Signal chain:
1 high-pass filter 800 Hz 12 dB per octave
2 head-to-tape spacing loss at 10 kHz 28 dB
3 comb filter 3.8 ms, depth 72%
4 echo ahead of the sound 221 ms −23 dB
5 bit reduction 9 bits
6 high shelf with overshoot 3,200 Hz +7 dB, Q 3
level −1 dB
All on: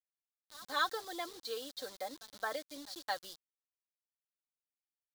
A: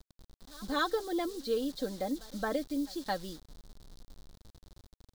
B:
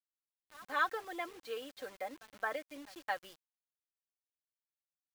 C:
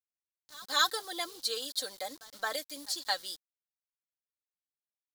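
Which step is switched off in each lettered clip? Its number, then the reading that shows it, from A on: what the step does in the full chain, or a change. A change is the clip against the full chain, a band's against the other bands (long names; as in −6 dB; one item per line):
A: 1, 250 Hz band +16.5 dB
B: 6, 8 kHz band −8.5 dB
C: 2, 8 kHz band +9.0 dB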